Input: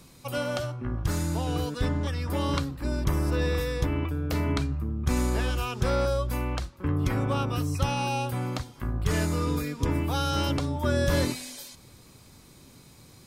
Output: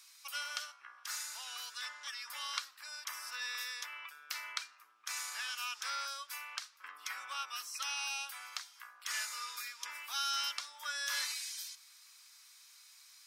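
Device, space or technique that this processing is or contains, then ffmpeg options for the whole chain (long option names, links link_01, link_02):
headphones lying on a table: -filter_complex "[0:a]highpass=frequency=1300:width=0.5412,highpass=frequency=1300:width=1.3066,equalizer=frequency=5500:width_type=o:width=0.47:gain=6,asettb=1/sr,asplit=3[link_01][link_02][link_03];[link_01]atrim=end=6.524[link_04];[link_02]atrim=start=6.52:end=7.69,asetpts=PTS-STARTPTS,afade=type=in:duration=0.004:curve=qsin,afade=type=out:start_time=1.166:duration=0.004:curve=qsin,lowshelf=frequency=200:gain=11.5[link_05];[link_03]atrim=start=7.686[link_06];[link_04][link_05]acrossfade=duration=0.004:curve1=hsin:curve2=qsin[link_07];[link_07][link_06]acrossfade=duration=0.004:curve1=qsin:curve2=hsin,volume=-3.5dB"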